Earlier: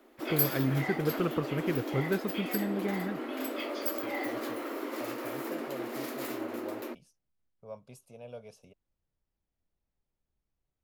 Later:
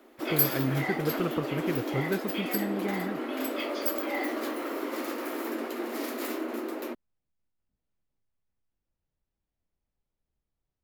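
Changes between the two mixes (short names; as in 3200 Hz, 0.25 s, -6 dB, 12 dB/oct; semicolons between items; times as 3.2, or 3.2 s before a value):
second voice: muted; background +3.5 dB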